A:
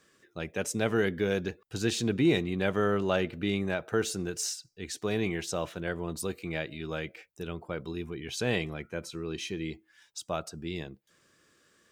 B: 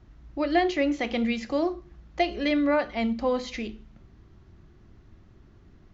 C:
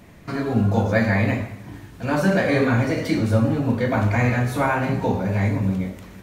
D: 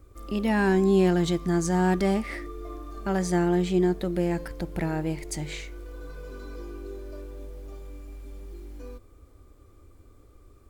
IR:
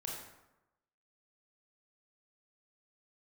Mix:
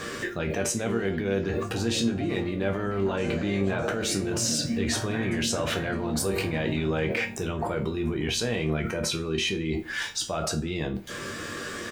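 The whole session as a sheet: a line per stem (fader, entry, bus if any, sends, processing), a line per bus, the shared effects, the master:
+1.5 dB, 0.00 s, send −16.5 dB, no echo send, high-shelf EQ 3,900 Hz −8 dB; envelope flattener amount 100%
−9.5 dB, 0.00 s, no send, no echo send, no processing
−9.0 dB, 1.00 s, no send, echo send −4.5 dB, low-pass on a step sequencer 2.3 Hz 230–7,300 Hz
+1.0 dB, 0.00 s, no send, echo send −11.5 dB, brickwall limiter −22 dBFS, peak gain reduction 11.5 dB; sample-and-hold tremolo, depth 95%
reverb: on, RT60 0.95 s, pre-delay 23 ms
echo: repeating echo 611 ms, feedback 59%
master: mains hum 50 Hz, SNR 26 dB; resonators tuned to a chord D#2 major, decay 0.24 s

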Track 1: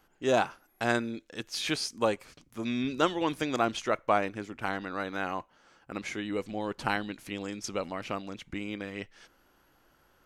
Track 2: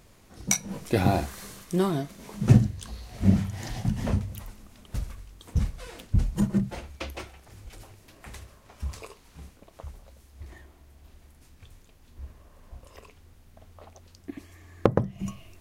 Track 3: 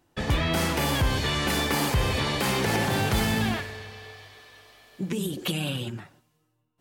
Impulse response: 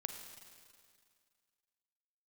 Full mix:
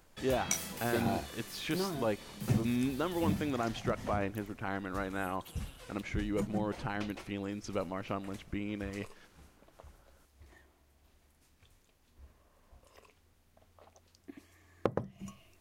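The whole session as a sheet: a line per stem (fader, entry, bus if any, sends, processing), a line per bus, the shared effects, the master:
−3.5 dB, 0.00 s, send −16.5 dB, low-shelf EQ 130 Hz +9 dB; brickwall limiter −19.5 dBFS, peak gain reduction 8.5 dB; high-shelf EQ 3,800 Hz −11.5 dB
−8.5 dB, 0.00 s, no send, low-shelf EQ 210 Hz −7.5 dB
−2.0 dB, 0.00 s, no send, first-order pre-emphasis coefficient 0.8; automatic ducking −15 dB, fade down 1.40 s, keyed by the first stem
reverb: on, RT60 2.1 s, pre-delay 36 ms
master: no processing

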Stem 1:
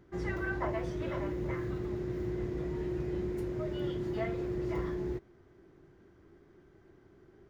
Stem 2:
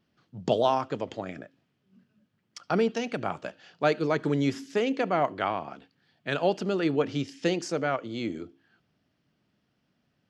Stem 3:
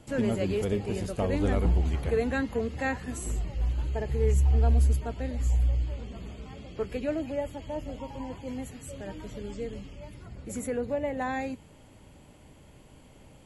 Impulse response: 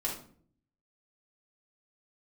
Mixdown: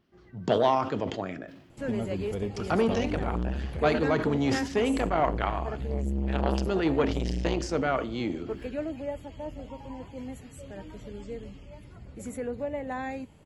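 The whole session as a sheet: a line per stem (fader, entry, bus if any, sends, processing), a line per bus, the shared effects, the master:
−14.0 dB, 0.00 s, no send, automatic ducking −12 dB, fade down 0.40 s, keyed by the second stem
+0.5 dB, 0.00 s, send −16.5 dB, level that may fall only so fast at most 81 dB per second
−2.5 dB, 1.70 s, no send, no processing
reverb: on, RT60 0.55 s, pre-delay 3 ms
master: high-shelf EQ 4,700 Hz −5 dB; saturating transformer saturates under 600 Hz

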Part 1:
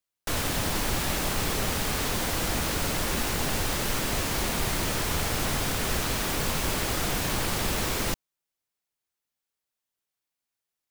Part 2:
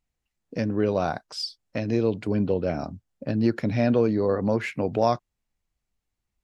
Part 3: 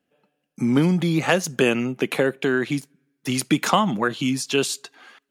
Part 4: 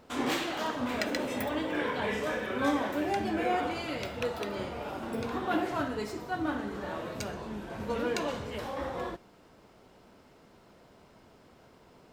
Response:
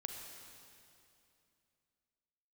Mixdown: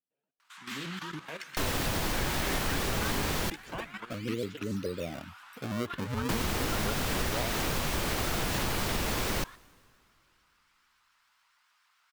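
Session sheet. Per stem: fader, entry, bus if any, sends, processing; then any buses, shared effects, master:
+1.0 dB, 1.30 s, muted 0:03.50–0:06.29, bus A, send −23 dB, no processing
−9.5 dB, 2.35 s, bus A, no send, gate on every frequency bin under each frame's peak −15 dB strong; sample-and-hold swept by an LFO 36×, swing 160% 0.32 Hz
−14.0 dB, 0.00 s, bus B, send −21 dB, flanger 1.6 Hz, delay 9.9 ms, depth 8.1 ms, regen +40%
+0.5 dB, 0.40 s, bus B, send −15.5 dB, Butterworth high-pass 1,100 Hz 36 dB per octave
bus A: 0.0 dB, parametric band 10,000 Hz −4.5 dB 1.4 octaves; downward compressor, threshold −27 dBFS, peak gain reduction 6 dB
bus B: 0.0 dB, output level in coarse steps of 18 dB; brickwall limiter −31 dBFS, peak gain reduction 11 dB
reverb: on, RT60 2.7 s, pre-delay 34 ms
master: pitch modulation by a square or saw wave saw up 7 Hz, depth 160 cents

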